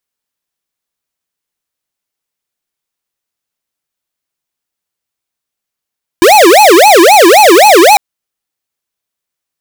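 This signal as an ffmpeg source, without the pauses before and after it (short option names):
-f lavfi -i "aevalsrc='0.708*(2*lt(mod((595*t-266/(2*PI*3.8)*sin(2*PI*3.8*t)),1),0.5)-1)':d=1.75:s=44100"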